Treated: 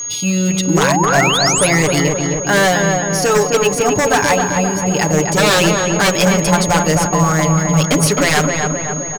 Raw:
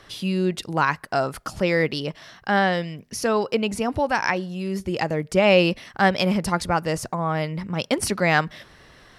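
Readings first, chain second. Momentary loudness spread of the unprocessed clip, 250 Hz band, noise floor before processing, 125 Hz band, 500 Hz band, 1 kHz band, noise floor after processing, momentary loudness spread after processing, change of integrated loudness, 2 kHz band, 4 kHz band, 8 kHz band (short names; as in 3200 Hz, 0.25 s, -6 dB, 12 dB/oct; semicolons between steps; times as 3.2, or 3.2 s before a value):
9 LU, +9.0 dB, -52 dBFS, +11.5 dB, +7.5 dB, +8.0 dB, -22 dBFS, 4 LU, +9.5 dB, +8.5 dB, +11.0 dB, +21.0 dB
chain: comb 6.9 ms, depth 89%; de-hum 87.8 Hz, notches 14; in parallel at -11 dB: bit-crush 5-bit; on the sum: whine 6600 Hz -26 dBFS; wavefolder -12 dBFS; painted sound rise, 0.67–1.67, 260–11000 Hz -22 dBFS; on a send: darkening echo 0.262 s, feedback 66%, low-pass 1800 Hz, level -3 dB; on the sum: gain +4.5 dB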